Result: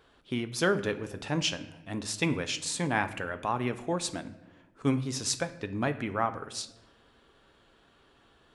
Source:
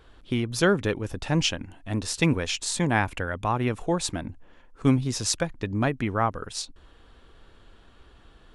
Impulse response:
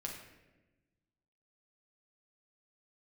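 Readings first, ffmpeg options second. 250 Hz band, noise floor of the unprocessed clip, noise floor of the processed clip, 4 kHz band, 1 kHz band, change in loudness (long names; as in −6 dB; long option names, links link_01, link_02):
−5.5 dB, −54 dBFS, −63 dBFS, −3.5 dB, −4.0 dB, −5.0 dB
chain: -filter_complex "[0:a]highpass=frequency=190:poles=1,flanger=delay=4.8:depth=5.7:regen=-79:speed=0.28:shape=sinusoidal,asplit=2[link_01][link_02];[1:a]atrim=start_sample=2205[link_03];[link_02][link_03]afir=irnorm=-1:irlink=0,volume=-5.5dB[link_04];[link_01][link_04]amix=inputs=2:normalize=0,volume=-2dB"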